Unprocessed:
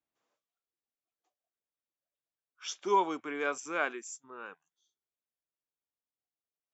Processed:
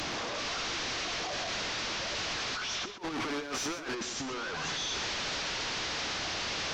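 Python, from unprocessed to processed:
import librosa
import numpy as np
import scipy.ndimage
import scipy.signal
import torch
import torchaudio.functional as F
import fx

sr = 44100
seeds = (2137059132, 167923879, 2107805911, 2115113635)

y = fx.delta_mod(x, sr, bps=32000, step_db=-28.5)
y = fx.over_compress(y, sr, threshold_db=-36.0, ratio=-0.5)
y = fx.leveller(y, sr, passes=1, at=(2.89, 3.95))
y = y + 10.0 ** (-10.5 / 20.0) * np.pad(y, (int(124 * sr / 1000.0), 0))[:len(y)]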